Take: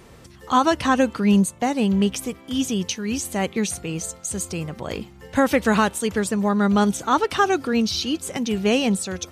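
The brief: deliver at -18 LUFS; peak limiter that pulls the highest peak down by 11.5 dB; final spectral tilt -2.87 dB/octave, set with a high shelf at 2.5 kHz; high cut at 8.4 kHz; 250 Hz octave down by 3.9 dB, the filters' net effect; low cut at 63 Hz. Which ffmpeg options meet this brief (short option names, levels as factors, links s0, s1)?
-af "highpass=63,lowpass=8400,equalizer=f=250:t=o:g=-5,highshelf=f=2500:g=9,volume=2.37,alimiter=limit=0.398:level=0:latency=1"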